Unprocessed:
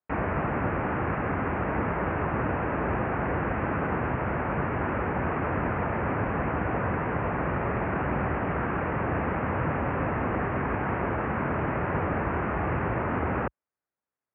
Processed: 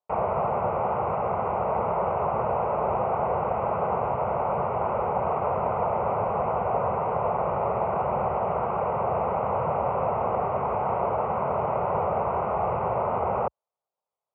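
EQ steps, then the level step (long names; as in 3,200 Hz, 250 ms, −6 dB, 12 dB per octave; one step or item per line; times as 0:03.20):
resonant band-pass 700 Hz, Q 0.58
phaser with its sweep stopped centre 710 Hz, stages 4
+8.0 dB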